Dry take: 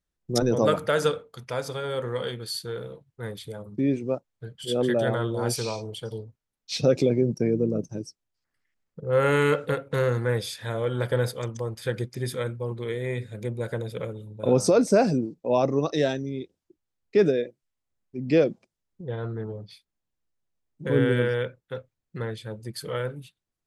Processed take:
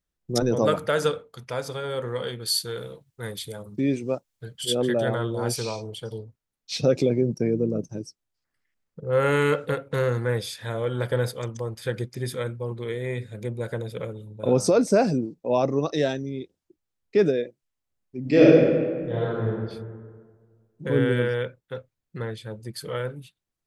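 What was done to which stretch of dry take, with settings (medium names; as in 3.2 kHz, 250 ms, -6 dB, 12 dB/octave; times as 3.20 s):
2.45–4.75 s: treble shelf 2.7 kHz +10.5 dB
18.20–19.46 s: reverb throw, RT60 1.7 s, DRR -7 dB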